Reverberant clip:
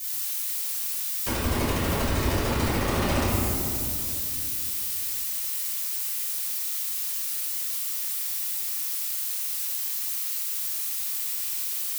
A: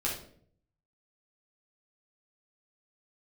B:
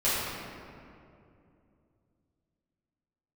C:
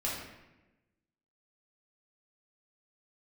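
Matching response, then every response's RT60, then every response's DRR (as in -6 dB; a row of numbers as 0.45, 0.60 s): B; 0.55, 2.6, 1.0 s; -5.0, -12.0, -6.5 dB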